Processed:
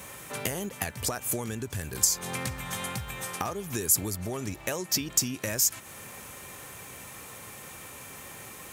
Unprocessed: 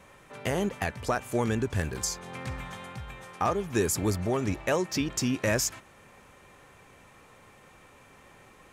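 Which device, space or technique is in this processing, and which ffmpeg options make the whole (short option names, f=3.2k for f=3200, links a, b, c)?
ASMR close-microphone chain: -af "lowshelf=f=110:g=7,acompressor=threshold=-37dB:ratio=8,highpass=81,aemphasis=mode=production:type=75fm,highshelf=f=12k:g=3,volume=7dB"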